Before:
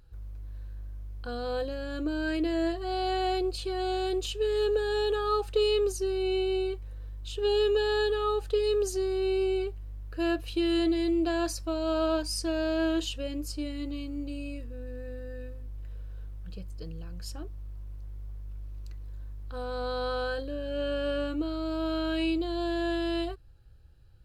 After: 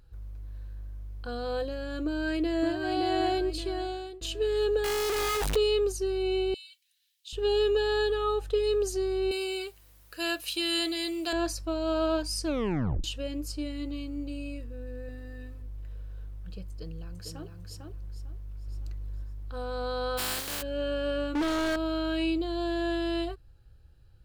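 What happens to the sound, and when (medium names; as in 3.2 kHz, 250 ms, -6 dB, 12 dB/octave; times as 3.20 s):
2.05–2.81 s: echo throw 570 ms, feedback 35%, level -3.5 dB
3.66–4.21 s: fade out, to -23 dB
4.84–5.56 s: one-bit comparator
6.54–7.33 s: inverse Chebyshev high-pass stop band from 650 Hz, stop band 70 dB
8.17–8.68 s: band-stop 4.6 kHz, Q 13
9.31–11.33 s: tilt EQ +4.5 dB/octave
12.46 s: tape stop 0.58 s
15.08–15.62 s: comb 6.9 ms
16.69–17.47 s: echo throw 450 ms, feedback 25%, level -4 dB
18.10–18.67 s: echo throw 560 ms, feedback 25%, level -5 dB
20.17–20.61 s: spectral contrast reduction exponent 0.21
21.35–21.76 s: overdrive pedal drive 41 dB, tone 2.5 kHz, clips at -21.5 dBFS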